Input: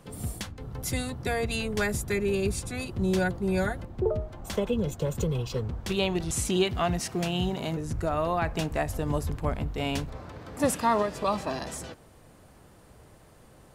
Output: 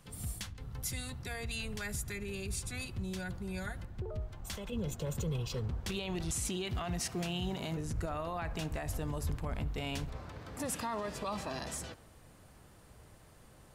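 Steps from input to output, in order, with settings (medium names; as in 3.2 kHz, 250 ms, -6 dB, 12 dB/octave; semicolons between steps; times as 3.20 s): peak limiter -23.5 dBFS, peak gain reduction 11 dB; peaking EQ 420 Hz -11 dB 2.8 oct, from 4.72 s -4.5 dB; filtered feedback delay 70 ms, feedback 74%, low-pass 3.7 kHz, level -22 dB; trim -2 dB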